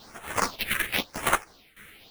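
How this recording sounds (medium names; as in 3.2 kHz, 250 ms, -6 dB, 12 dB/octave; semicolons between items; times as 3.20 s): aliases and images of a low sample rate 7.6 kHz, jitter 20%; phasing stages 4, 0.96 Hz, lowest notch 790–4700 Hz; tremolo saw down 1.7 Hz, depth 85%; a shimmering, thickened sound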